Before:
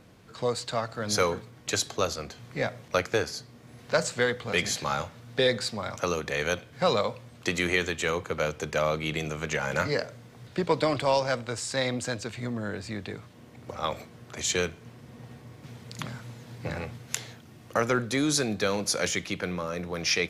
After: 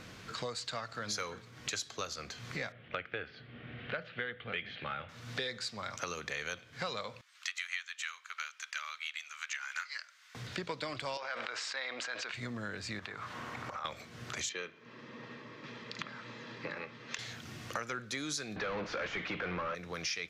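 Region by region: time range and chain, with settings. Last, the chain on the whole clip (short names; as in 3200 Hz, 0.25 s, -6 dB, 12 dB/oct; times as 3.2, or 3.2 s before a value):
2.72–5.09 elliptic low-pass 3200 Hz, stop band 70 dB + bell 1000 Hz -10.5 dB 0.42 oct
7.21–10.35 HPF 1200 Hz 24 dB/oct + upward expander, over -40 dBFS
11.17–12.34 BPF 660–2900 Hz + sustainer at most 25 dB/s
12.99–13.85 bell 1100 Hz +14.5 dB 1.7 oct + compressor, threshold -39 dBFS
14.49–17.19 HPF 260 Hz + air absorption 210 m + notch comb 740 Hz
18.56–19.75 overdrive pedal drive 30 dB, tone 2300 Hz, clips at -12.5 dBFS + tape spacing loss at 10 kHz 34 dB
whole clip: band shelf 2900 Hz +8 dB 2.9 oct; compressor 4:1, threshold -42 dBFS; gain +2.5 dB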